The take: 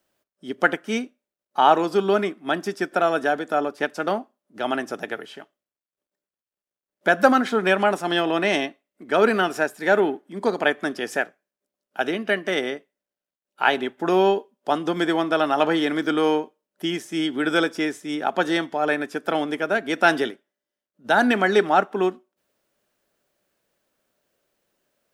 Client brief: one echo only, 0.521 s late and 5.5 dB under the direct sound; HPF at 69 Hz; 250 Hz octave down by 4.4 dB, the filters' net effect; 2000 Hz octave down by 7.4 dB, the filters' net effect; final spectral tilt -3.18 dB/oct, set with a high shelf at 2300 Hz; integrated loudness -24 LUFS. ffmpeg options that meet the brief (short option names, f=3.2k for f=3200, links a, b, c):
-af "highpass=69,equalizer=f=250:t=o:g=-6,equalizer=f=2k:t=o:g=-7.5,highshelf=f=2.3k:g=-6,aecho=1:1:521:0.531,volume=1.5dB"